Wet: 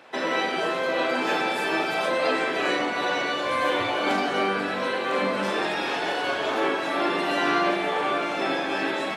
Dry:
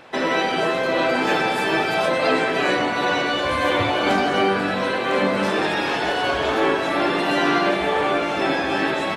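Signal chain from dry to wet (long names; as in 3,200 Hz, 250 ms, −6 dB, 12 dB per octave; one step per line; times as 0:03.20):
Bessel high-pass filter 230 Hz, order 2
on a send: flutter between parallel walls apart 6.9 metres, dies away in 0.27 s
on the sum: level −4.5 dB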